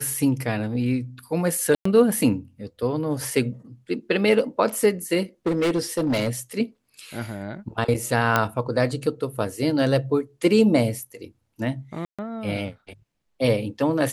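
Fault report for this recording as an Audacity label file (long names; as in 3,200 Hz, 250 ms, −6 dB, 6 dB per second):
1.750000	1.850000	drop-out 104 ms
5.460000	6.290000	clipping −18 dBFS
8.360000	8.360000	click −5 dBFS
12.050000	12.190000	drop-out 136 ms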